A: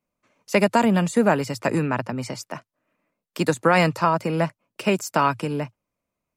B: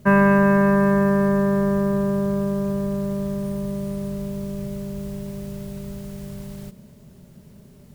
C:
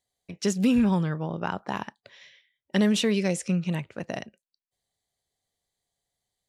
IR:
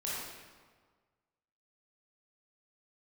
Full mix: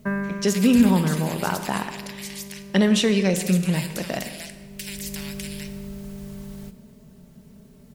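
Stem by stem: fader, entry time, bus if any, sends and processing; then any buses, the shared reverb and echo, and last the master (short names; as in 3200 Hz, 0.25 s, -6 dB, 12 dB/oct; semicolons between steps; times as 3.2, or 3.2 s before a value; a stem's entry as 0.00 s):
-4.0 dB, 0.00 s, send -10 dB, elliptic high-pass 2000 Hz, stop band 40 dB; spectral compressor 4:1
-3.5 dB, 0.00 s, send -16 dB, comb 4.5 ms, depth 43%; compressor 1.5:1, threshold -29 dBFS, peak gain reduction 7 dB; auto duck -14 dB, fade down 0.70 s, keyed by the third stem
+2.5 dB, 0.00 s, send -9.5 dB, dry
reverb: on, RT60 1.6 s, pre-delay 18 ms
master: dry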